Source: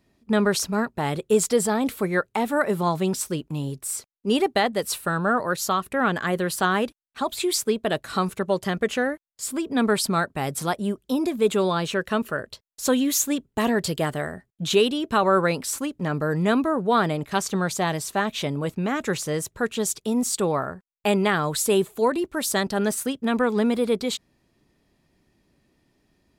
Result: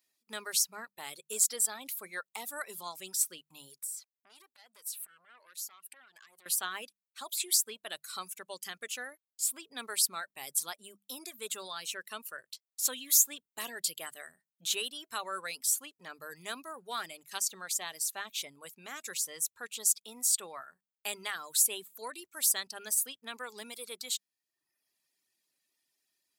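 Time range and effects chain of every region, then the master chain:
3.79–6.46 low shelf 230 Hz -8.5 dB + compressor 12:1, threshold -35 dBFS + core saturation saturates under 1700 Hz
whole clip: notches 50/100/150/200 Hz; reverb removal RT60 0.82 s; differentiator

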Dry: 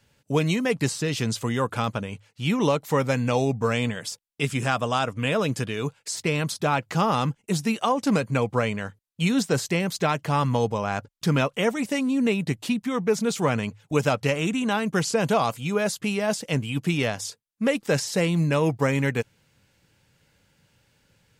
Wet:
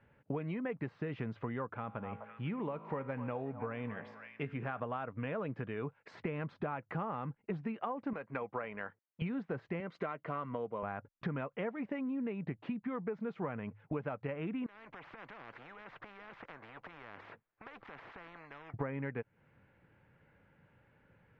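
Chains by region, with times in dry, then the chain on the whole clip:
1.74–4.8 resonator 54 Hz, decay 1.4 s, mix 50% + delay with a stepping band-pass 0.253 s, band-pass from 830 Hz, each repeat 1.4 oct, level -9 dB
8.13–9.22 HPF 590 Hz 6 dB/oct + AM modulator 260 Hz, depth 15%
9.8–10.83 HPF 300 Hz 6 dB/oct + high shelf 6400 Hz +10.5 dB + notch comb 840 Hz
14.66–18.74 compressor, threshold -30 dBFS + spectral compressor 10:1
whole clip: LPF 2000 Hz 24 dB/oct; low shelf 130 Hz -5 dB; compressor 10:1, threshold -35 dBFS

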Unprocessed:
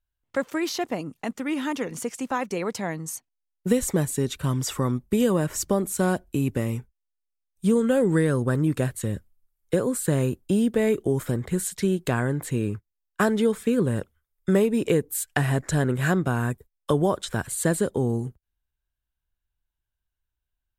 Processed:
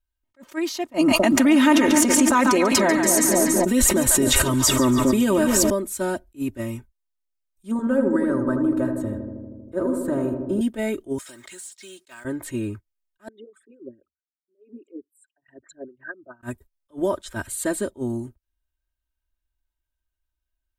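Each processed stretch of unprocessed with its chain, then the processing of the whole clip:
0.94–5.7 split-band echo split 770 Hz, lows 0.253 s, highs 0.142 s, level -9 dB + fast leveller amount 100%
7.71–10.61 resonant high shelf 1800 Hz -11 dB, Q 1.5 + darkening echo 79 ms, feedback 81%, low-pass 1300 Hz, level -5.5 dB
11.18–12.25 weighting filter ITU-R 468 + compressor 5:1, threshold -38 dBFS + short-mantissa float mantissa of 2-bit
13.28–16.43 formant sharpening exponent 3 + LFO band-pass sine 4.6 Hz 650–4200 Hz
whole clip: comb 3.2 ms, depth 90%; attack slew limiter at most 400 dB/s; gain -3 dB

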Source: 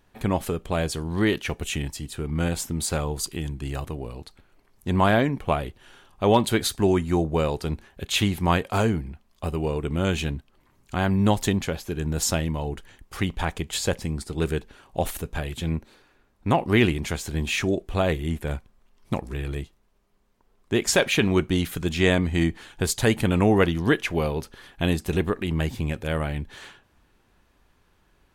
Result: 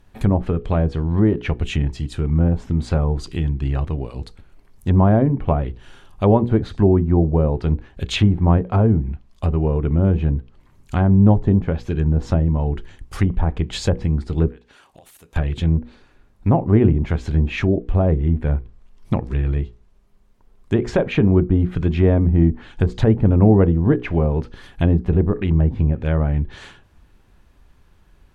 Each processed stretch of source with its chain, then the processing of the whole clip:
14.48–15.36 HPF 800 Hz 6 dB/oct + compressor 10:1, threshold -47 dBFS + short-mantissa float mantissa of 4-bit
whole clip: low shelf 190 Hz +11 dB; notches 60/120/180/240/300/360/420/480 Hz; treble ducked by the level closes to 790 Hz, closed at -14.5 dBFS; gain +2.5 dB

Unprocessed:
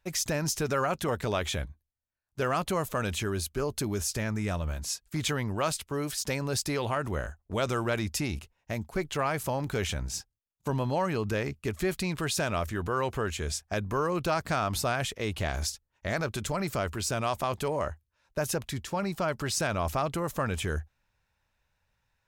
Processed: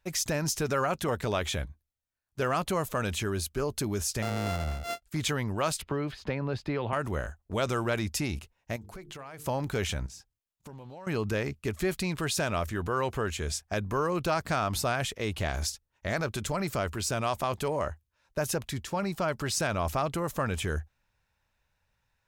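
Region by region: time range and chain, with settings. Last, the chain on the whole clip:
4.22–5.03 sample sorter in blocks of 64 samples + high shelf 7700 Hz -8.5 dB
5.82–6.93 air absorption 340 m + notch 5600 Hz + three-band squash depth 70%
8.76–9.46 notches 50/100/150/200/250/300/350/400/450 Hz + compressor 8:1, threshold -40 dBFS
10.06–11.07 compressor 4:1, threshold -45 dBFS + Doppler distortion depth 0.23 ms
whole clip: dry

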